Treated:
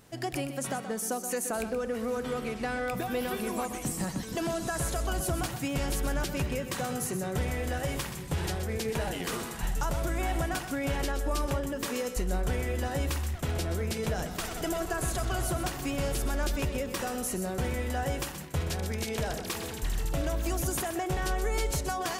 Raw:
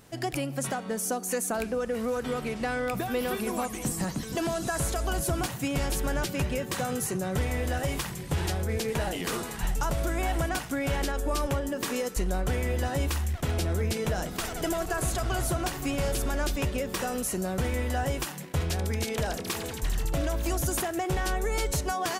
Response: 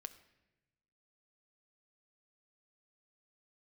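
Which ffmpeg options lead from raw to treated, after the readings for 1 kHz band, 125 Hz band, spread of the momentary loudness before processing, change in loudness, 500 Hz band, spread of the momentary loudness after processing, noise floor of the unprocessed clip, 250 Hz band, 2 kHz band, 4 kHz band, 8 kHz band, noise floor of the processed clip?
−2.0 dB, −2.5 dB, 3 LU, −2.0 dB, −2.0 dB, 3 LU, −38 dBFS, −2.0 dB, −2.0 dB, −2.0 dB, −2.0 dB, −39 dBFS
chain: -filter_complex "[0:a]asplit=2[link_01][link_02];[1:a]atrim=start_sample=2205,adelay=126[link_03];[link_02][link_03]afir=irnorm=-1:irlink=0,volume=-5dB[link_04];[link_01][link_04]amix=inputs=2:normalize=0,volume=-2.5dB"

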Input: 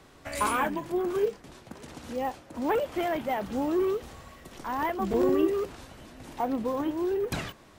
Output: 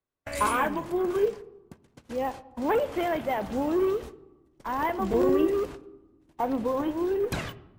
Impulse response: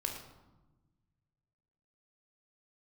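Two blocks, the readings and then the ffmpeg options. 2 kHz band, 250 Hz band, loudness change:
+1.5 dB, +1.0 dB, +1.5 dB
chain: -filter_complex "[0:a]agate=range=-38dB:threshold=-40dB:ratio=16:detection=peak,asplit=2[link_01][link_02];[1:a]atrim=start_sample=2205,lowpass=3200[link_03];[link_02][link_03]afir=irnorm=-1:irlink=0,volume=-12dB[link_04];[link_01][link_04]amix=inputs=2:normalize=0"

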